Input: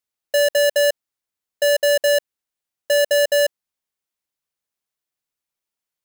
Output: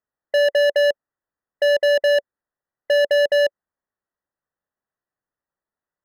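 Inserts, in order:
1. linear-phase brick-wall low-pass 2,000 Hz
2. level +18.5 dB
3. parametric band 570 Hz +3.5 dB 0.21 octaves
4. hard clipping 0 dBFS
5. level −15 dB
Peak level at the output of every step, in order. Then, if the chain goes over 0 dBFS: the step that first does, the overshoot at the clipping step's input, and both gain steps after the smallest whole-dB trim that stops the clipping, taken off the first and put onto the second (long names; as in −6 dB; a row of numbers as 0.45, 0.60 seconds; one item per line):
−13.5, +5.0, +8.0, 0.0, −15.0 dBFS
step 2, 8.0 dB
step 2 +10.5 dB, step 5 −7 dB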